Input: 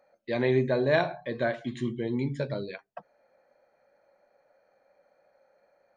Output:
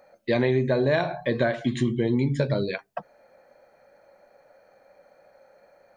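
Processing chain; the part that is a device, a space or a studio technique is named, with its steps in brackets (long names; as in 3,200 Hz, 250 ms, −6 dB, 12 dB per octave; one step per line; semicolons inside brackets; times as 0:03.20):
ASMR close-microphone chain (low-shelf EQ 160 Hz +5 dB; downward compressor 6 to 1, threshold −28 dBFS, peak gain reduction 10 dB; high-shelf EQ 6,300 Hz +4 dB)
level +9 dB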